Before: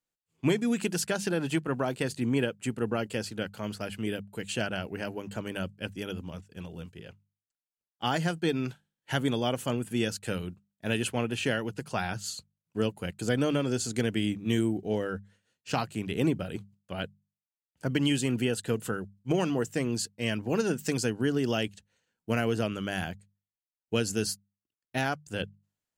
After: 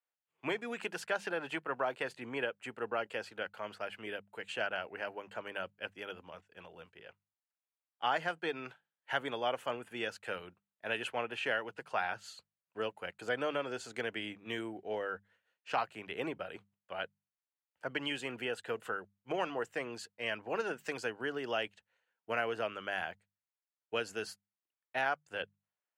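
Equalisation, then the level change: three-band isolator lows -22 dB, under 500 Hz, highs -18 dB, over 2.9 kHz; 0.0 dB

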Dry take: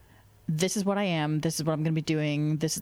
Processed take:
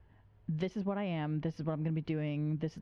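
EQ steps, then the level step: Bessel low-pass 8.9 kHz; distance through air 350 m; bass shelf 100 Hz +6.5 dB; -8.0 dB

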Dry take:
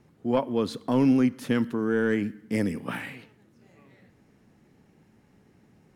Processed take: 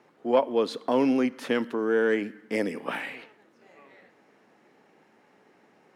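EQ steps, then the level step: high-pass 500 Hz 12 dB/octave; low-pass 2.3 kHz 6 dB/octave; dynamic bell 1.3 kHz, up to -6 dB, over -46 dBFS, Q 0.93; +8.5 dB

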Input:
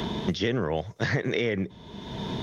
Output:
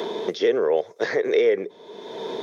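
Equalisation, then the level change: resonant high-pass 440 Hz, resonance Q 3.8; band-stop 2.9 kHz, Q 10; 0.0 dB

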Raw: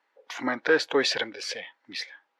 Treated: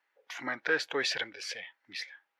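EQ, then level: graphic EQ 125/250/500/1000/4000/8000 Hz -3/-10/-7/-7/-5/-4 dB; 0.0 dB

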